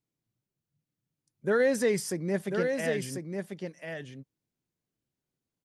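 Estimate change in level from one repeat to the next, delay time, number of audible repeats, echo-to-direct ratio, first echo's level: no regular repeats, 1043 ms, 1, -5.5 dB, -5.5 dB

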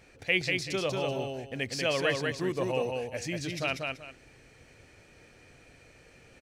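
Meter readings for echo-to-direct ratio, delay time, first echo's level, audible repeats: -3.0 dB, 191 ms, -3.5 dB, 2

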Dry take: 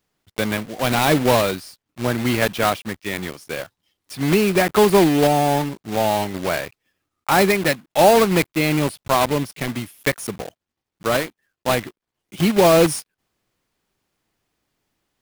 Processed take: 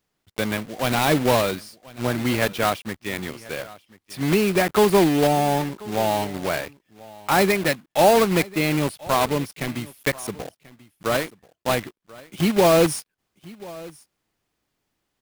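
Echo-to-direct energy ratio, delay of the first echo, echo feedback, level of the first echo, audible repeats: -21.0 dB, 1036 ms, no regular repeats, -21.0 dB, 1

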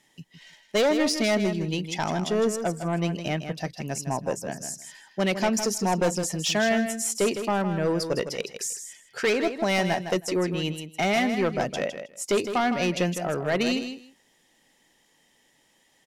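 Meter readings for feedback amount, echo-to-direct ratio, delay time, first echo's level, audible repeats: 16%, -9.0 dB, 159 ms, -9.0 dB, 2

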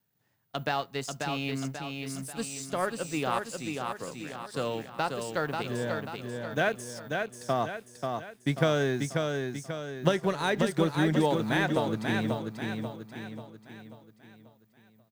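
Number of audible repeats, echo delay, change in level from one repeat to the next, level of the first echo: 5, 538 ms, -6.5 dB, -4.5 dB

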